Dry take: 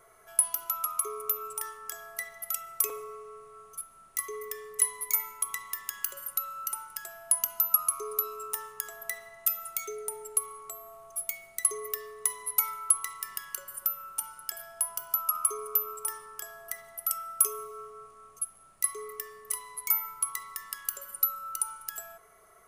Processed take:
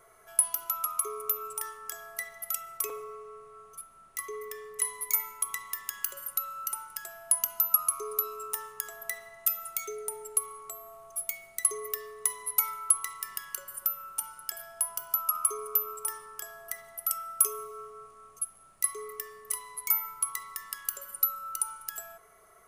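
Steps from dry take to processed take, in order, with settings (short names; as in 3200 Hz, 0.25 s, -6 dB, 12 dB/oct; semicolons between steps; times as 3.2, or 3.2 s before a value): 2.77–4.85 high shelf 5700 Hz -6 dB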